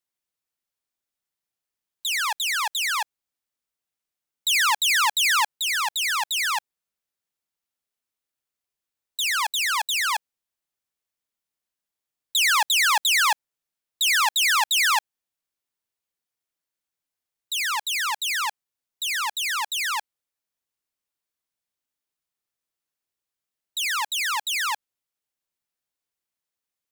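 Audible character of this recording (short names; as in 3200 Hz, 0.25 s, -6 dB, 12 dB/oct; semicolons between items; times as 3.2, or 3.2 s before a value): noise floor -88 dBFS; spectral tilt -0.5 dB/oct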